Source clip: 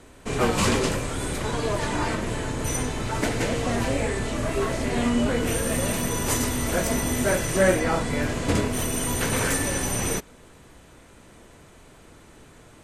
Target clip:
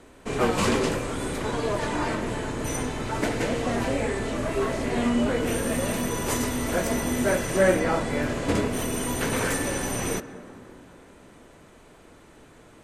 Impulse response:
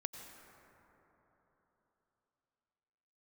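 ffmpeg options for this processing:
-filter_complex "[0:a]asplit=2[link_01][link_02];[link_02]highpass=240,lowpass=7900[link_03];[1:a]atrim=start_sample=2205,lowshelf=frequency=230:gain=10.5,highshelf=frequency=4900:gain=-11.5[link_04];[link_03][link_04]afir=irnorm=-1:irlink=0,volume=-3.5dB[link_05];[link_01][link_05]amix=inputs=2:normalize=0,volume=-4dB"

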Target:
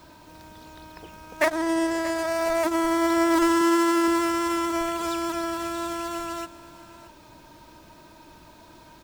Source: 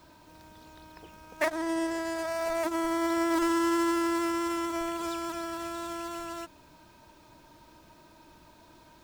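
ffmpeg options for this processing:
ffmpeg -i in.wav -filter_complex "[0:a]asettb=1/sr,asplit=3[link_01][link_02][link_03];[link_01]atrim=end=3.614[link_04];[link_02]atrim=start=3.61:end=4.08,asetpts=PTS-STARTPTS,afade=type=in:duration=0.004:curve=qsin,afade=type=out:start_time=0.466:duration=0.004:curve=qsin,highpass=140[link_05];[link_03]atrim=start=4.076[link_06];[link_04][link_05]acrossfade=duration=0.004:curve1=hsin:curve2=qsin[link_07];[link_07][link_06]acrossfade=duration=0.004:curve1=qsin:curve2=hsin,aecho=1:1:628:0.133,volume=6dB" out.wav

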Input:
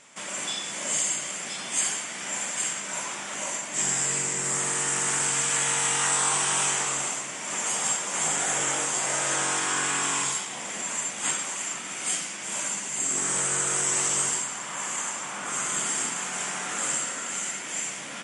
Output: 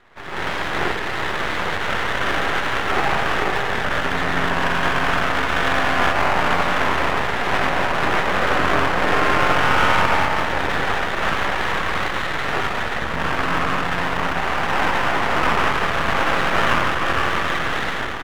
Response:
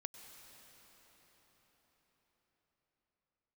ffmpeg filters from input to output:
-filter_complex "[0:a]acrossover=split=170[link_01][link_02];[link_02]alimiter=limit=-21dB:level=0:latency=1[link_03];[link_01][link_03]amix=inputs=2:normalize=0,dynaudnorm=framelen=250:gausssize=3:maxgain=14dB,crystalizer=i=4.5:c=0,highpass=frequency=200:width_type=q:width=0.5412,highpass=frequency=200:width_type=q:width=1.307,lowpass=frequency=2000:width_type=q:width=0.5176,lowpass=frequency=2000:width_type=q:width=0.7071,lowpass=frequency=2000:width_type=q:width=1.932,afreqshift=-200,aecho=1:1:138:0.251,asplit=2[link_04][link_05];[1:a]atrim=start_sample=2205[link_06];[link_05][link_06]afir=irnorm=-1:irlink=0,volume=8.5dB[link_07];[link_04][link_07]amix=inputs=2:normalize=0,aeval=exprs='max(val(0),0)':channel_layout=same,volume=-3dB"

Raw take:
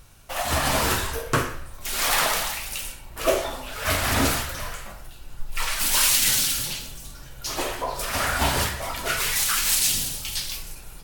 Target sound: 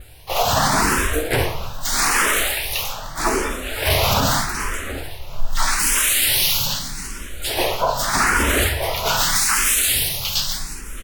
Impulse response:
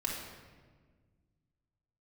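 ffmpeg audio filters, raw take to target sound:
-filter_complex "[0:a]adynamicequalizer=threshold=0.01:dfrequency=7200:dqfactor=2.3:tfrequency=7200:tqfactor=2.3:attack=5:release=100:ratio=0.375:range=2.5:mode=cutabove:tftype=bell,asplit=2[link_01][link_02];[link_02]adelay=725,lowpass=frequency=3900:poles=1,volume=-16.5dB,asplit=2[link_03][link_04];[link_04]adelay=725,lowpass=frequency=3900:poles=1,volume=0.32,asplit=2[link_05][link_06];[link_06]adelay=725,lowpass=frequency=3900:poles=1,volume=0.32[link_07];[link_01][link_03][link_05][link_07]amix=inputs=4:normalize=0,asplit=4[link_08][link_09][link_10][link_11];[link_09]asetrate=29433,aresample=44100,atempo=1.49831,volume=-6dB[link_12];[link_10]asetrate=58866,aresample=44100,atempo=0.749154,volume=-13dB[link_13];[link_11]asetrate=66075,aresample=44100,atempo=0.66742,volume=-10dB[link_14];[link_08][link_12][link_13][link_14]amix=inputs=4:normalize=0,alimiter=level_in=12.5dB:limit=-1dB:release=50:level=0:latency=1,asplit=2[link_15][link_16];[link_16]afreqshift=0.81[link_17];[link_15][link_17]amix=inputs=2:normalize=1,volume=-3.5dB"

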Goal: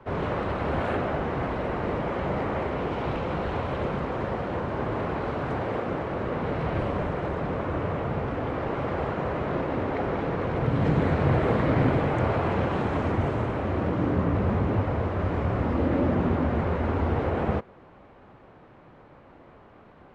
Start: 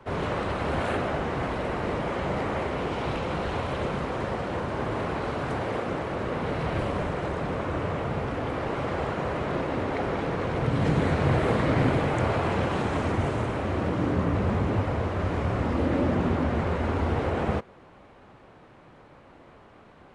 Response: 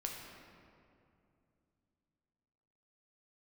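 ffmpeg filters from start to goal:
-af "aemphasis=mode=reproduction:type=75fm"

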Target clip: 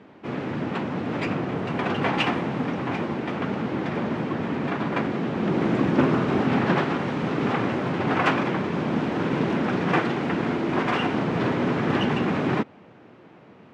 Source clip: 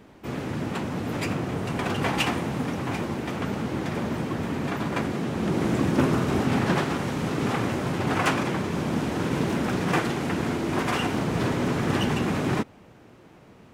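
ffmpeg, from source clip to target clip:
ffmpeg -i in.wav -af "highpass=140,lowpass=3200,volume=2.5dB" out.wav

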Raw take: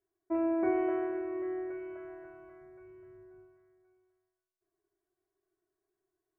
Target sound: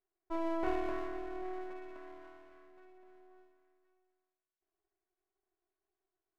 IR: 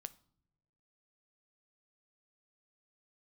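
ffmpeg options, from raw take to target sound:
-af "highpass=370,lowpass=2600,aeval=exprs='max(val(0),0)':channel_layout=same,volume=1dB"

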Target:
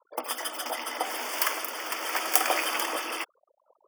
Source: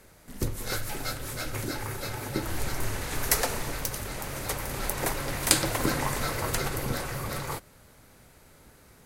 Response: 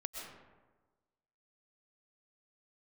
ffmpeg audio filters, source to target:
-af "highpass=frequency=180:width=0.5412,highpass=frequency=180:width=1.3066,afftfilt=real='re*gte(hypot(re,im),0.00708)':imag='im*gte(hypot(re,im),0.00708)':win_size=1024:overlap=0.75,asuperstop=centerf=1700:order=4:qfactor=2.9,asetrate=103194,aresample=44100,volume=3.5dB"

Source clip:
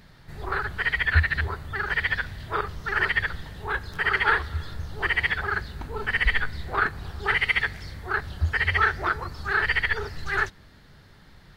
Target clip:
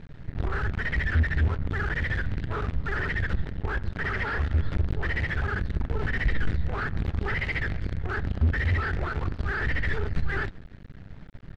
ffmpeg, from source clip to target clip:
ffmpeg -i in.wav -af "equalizer=frequency=360:width=0.91:gain=-7,acontrast=87,aresample=11025,asoftclip=type=hard:threshold=-16dB,aresample=44100,acrusher=bits=5:dc=4:mix=0:aa=0.000001,lowpass=1300,alimiter=limit=-23dB:level=0:latency=1:release=76,equalizer=frequency=1000:width=0.91:gain=-12,volume=6.5dB" out.wav

